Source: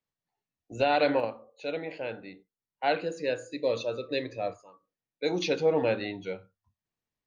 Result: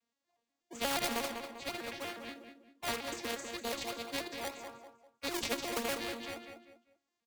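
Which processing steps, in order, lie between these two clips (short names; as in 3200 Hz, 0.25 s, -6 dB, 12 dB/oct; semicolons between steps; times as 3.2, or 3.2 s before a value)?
arpeggiated vocoder minor triad, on A#3, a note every 0.12 s; tilt +3.5 dB/oct; in parallel at -11 dB: decimation with a swept rate 23×, swing 100% 3.2 Hz; on the sum: added harmonics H 3 -17 dB, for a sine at -16 dBFS; on a send: feedback echo 0.197 s, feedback 24%, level -13.5 dB; on the sum: spectral compressor 2:1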